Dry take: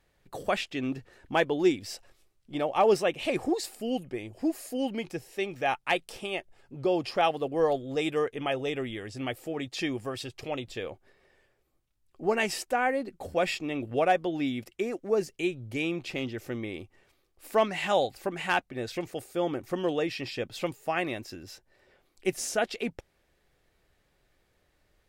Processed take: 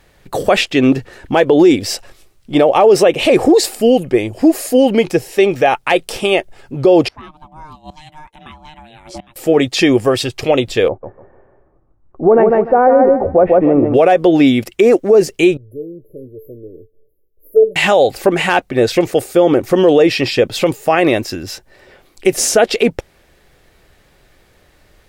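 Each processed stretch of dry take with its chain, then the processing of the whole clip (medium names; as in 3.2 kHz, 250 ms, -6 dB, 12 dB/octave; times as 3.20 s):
7.08–9.36 s: inverted gate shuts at -29 dBFS, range -27 dB + ring modulator 460 Hz + three bands compressed up and down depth 70%
10.88–13.94 s: low-pass 1.2 kHz 24 dB/octave + feedback delay 149 ms, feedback 25%, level -5.5 dB
15.57–17.76 s: brick-wall FIR band-stop 640–11000 Hz + peaking EQ 220 Hz -9 dB 0.37 oct + feedback comb 440 Hz, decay 0.24 s, mix 90%
whole clip: dynamic bell 470 Hz, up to +8 dB, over -40 dBFS, Q 1.3; loudness maximiser +19.5 dB; trim -1 dB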